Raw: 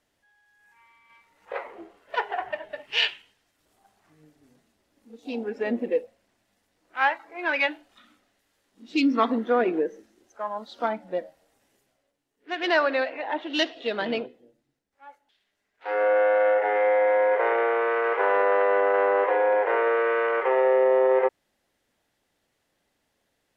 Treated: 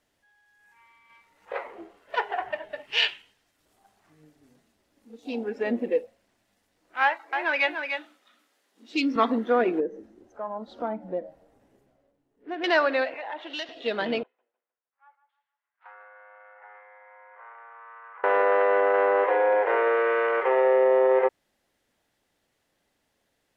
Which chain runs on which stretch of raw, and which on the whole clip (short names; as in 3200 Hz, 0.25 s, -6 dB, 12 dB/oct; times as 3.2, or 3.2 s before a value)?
7.03–9.16 HPF 320 Hz + echo 0.296 s -6.5 dB
9.8–12.64 tilt shelf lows +10 dB, about 1400 Hz + compressor 1.5:1, threshold -41 dBFS
13.14–13.69 HPF 490 Hz + compressor 3:1, threshold -32 dBFS
14.23–18.24 compressor 10:1, threshold -30 dBFS + ladder band-pass 1300 Hz, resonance 50% + feedback echo 0.154 s, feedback 36%, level -12.5 dB
whole clip: dry